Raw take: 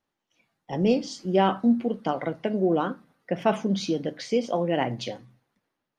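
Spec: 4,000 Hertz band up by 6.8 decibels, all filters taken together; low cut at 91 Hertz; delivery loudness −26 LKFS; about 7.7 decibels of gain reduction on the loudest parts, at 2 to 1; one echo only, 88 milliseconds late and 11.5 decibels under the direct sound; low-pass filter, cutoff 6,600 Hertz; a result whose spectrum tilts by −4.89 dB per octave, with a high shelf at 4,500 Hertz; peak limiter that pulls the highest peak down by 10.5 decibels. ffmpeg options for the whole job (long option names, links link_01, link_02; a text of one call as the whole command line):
ffmpeg -i in.wav -af "highpass=91,lowpass=6600,equalizer=frequency=4000:width_type=o:gain=6.5,highshelf=frequency=4500:gain=6,acompressor=threshold=-30dB:ratio=2,alimiter=level_in=1.5dB:limit=-24dB:level=0:latency=1,volume=-1.5dB,aecho=1:1:88:0.266,volume=9.5dB" out.wav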